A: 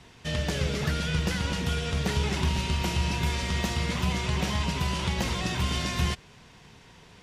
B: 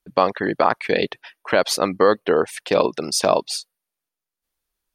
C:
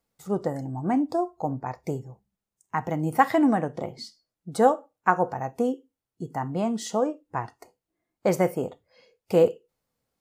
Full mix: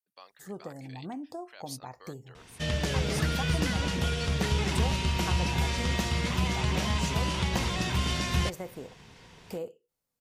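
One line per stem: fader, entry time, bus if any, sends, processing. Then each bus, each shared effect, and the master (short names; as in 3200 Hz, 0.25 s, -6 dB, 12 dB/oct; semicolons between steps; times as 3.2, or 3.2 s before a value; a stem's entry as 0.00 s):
-0.5 dB, 2.35 s, no send, dry
-17.0 dB, 0.00 s, no send, differentiator
-8.0 dB, 0.20 s, no send, compressor 2.5:1, threshold -31 dBFS, peak gain reduction 12.5 dB; high shelf 5000 Hz +8 dB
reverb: off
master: dry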